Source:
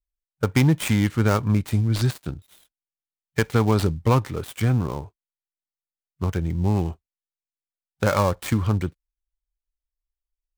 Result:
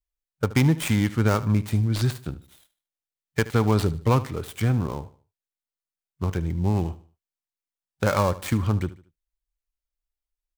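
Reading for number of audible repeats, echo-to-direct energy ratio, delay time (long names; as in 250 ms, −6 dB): 2, −16.5 dB, 75 ms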